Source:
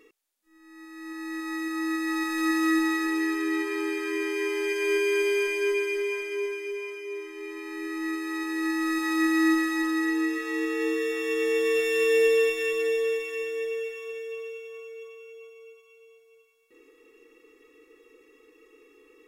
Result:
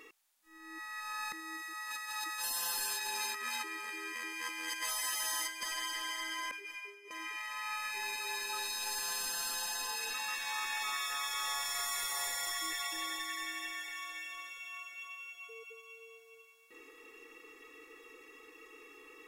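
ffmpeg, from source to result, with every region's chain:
ffmpeg -i in.wav -filter_complex "[0:a]asettb=1/sr,asplit=3[link_01][link_02][link_03];[link_01]atrim=end=1.324[link_04];[link_02]atrim=start=1.32:end=5.63,asetpts=PTS-STARTPTS,afade=type=in:duration=0.004:curve=qsin,afade=type=out:start_time=4.306:duration=0.004:curve=qsin,agate=range=-14dB:threshold=-27dB:ratio=16:release=100:detection=peak,bass=frequency=250:gain=-5,treble=frequency=4000:gain=5[link_05];[link_03]atrim=start=5.626[link_06];[link_04][link_05]acrossfade=duration=0.004:curve1=hsin:curve2=qsin[link_07];[link_07][link_06]acrossfade=duration=0.004:curve1=qsin:curve2=hsin,asettb=1/sr,asplit=3[link_08][link_09][link_10];[link_08]atrim=end=6.514[link_11];[link_09]atrim=start=6.51:end=7.11,asetpts=PTS-STARTPTS,afade=type=in:duration=0.004:curve=qsin,afade=type=out:start_time=0.596:duration=0.004:curve=qsin,agate=range=-33dB:threshold=-24dB:ratio=3:release=100:detection=peak,acontrast=64,asplit=2[link_12][link_13];[link_13]adelay=20,volume=-13.5dB[link_14];[link_12][link_14]amix=inputs=2:normalize=0,atrim=end_sample=26460[link_15];[link_10]atrim=start=7.106[link_16];[link_11][link_15]acrossfade=duration=0.004:curve1=hsin:curve2=qsin[link_17];[link_17][link_16]acrossfade=duration=0.004:curve1=qsin:curve2=hsin,afftfilt=real='re*lt(hypot(re,im),0.0447)':imag='im*lt(hypot(re,im),0.0447)':win_size=1024:overlap=0.75,lowshelf=frequency=610:width_type=q:width=1.5:gain=-7,volume=6dB" out.wav

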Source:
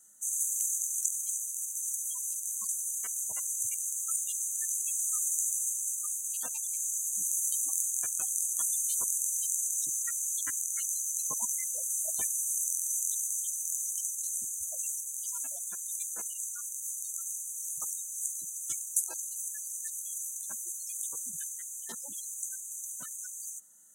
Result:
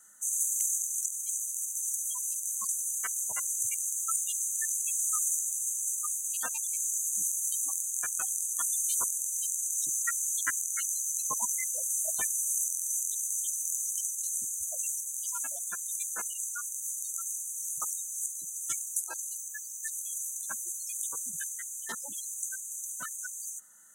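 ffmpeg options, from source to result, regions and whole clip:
ffmpeg -i in.wav -filter_complex "[0:a]asettb=1/sr,asplit=3[link_01][link_02][link_03];[link_01]atrim=end=19.374[link_04];[link_02]atrim=start=19.37:end=19.83,asetpts=PTS-STARTPTS,afade=type=in:duration=0.004:curve=qsin,afade=type=out:start_time=0.456:duration=0.004:curve=qsin,acrossover=split=7100[link_05][link_06];[link_06]acompressor=threshold=-50dB:ratio=4:attack=1:release=60[link_07];[link_05][link_07]amix=inputs=2:normalize=0,equalizer=frequency=15000:width_type=o:width=0.26:gain=14[link_08];[link_03]atrim=start=19.826[link_09];[link_04][link_08]acrossfade=duration=0.004:curve1=hsin:curve2=qsin[link_10];[link_10][link_09]acrossfade=duration=0.004:curve1=qsin:curve2=hsin,equalizer=frequency=1500:width=0.94:gain=12.5,alimiter=limit=-13.5dB:level=0:latency=1:release=365,volume=1dB" out.wav

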